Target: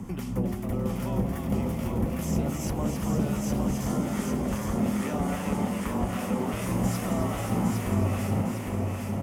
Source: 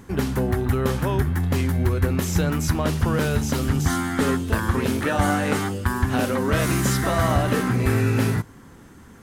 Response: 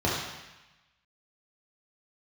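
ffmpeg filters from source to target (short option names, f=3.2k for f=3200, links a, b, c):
-filter_complex "[0:a]afreqshift=-14,equalizer=f=80:t=o:w=0.21:g=-14,acompressor=threshold=-40dB:ratio=2.5,asplit=2[a][b];[b]asplit=8[c][d][e][f][g][h][i][j];[c]adelay=267,afreqshift=150,volume=-5.5dB[k];[d]adelay=534,afreqshift=300,volume=-9.9dB[l];[e]adelay=801,afreqshift=450,volume=-14.4dB[m];[f]adelay=1068,afreqshift=600,volume=-18.8dB[n];[g]adelay=1335,afreqshift=750,volume=-23.2dB[o];[h]adelay=1602,afreqshift=900,volume=-27.7dB[p];[i]adelay=1869,afreqshift=1050,volume=-32.1dB[q];[j]adelay=2136,afreqshift=1200,volume=-36.6dB[r];[k][l][m][n][o][p][q][r]amix=inputs=8:normalize=0[s];[a][s]amix=inputs=2:normalize=0,acrossover=split=1100[t][u];[t]aeval=exprs='val(0)*(1-0.5/2+0.5/2*cos(2*PI*2.5*n/s))':c=same[v];[u]aeval=exprs='val(0)*(1-0.5/2-0.5/2*cos(2*PI*2.5*n/s))':c=same[w];[v][w]amix=inputs=2:normalize=0,equalizer=f=100:t=o:w=0.33:g=7,equalizer=f=200:t=o:w=0.33:g=11,equalizer=f=400:t=o:w=0.33:g=-4,equalizer=f=1.6k:t=o:w=0.33:g=-12,equalizer=f=4k:t=o:w=0.33:g=-10,asplit=2[x][y];[y]aecho=0:1:808|1616|2424|3232|4040:0.631|0.265|0.111|0.0467|0.0196[z];[x][z]amix=inputs=2:normalize=0,volume=5dB"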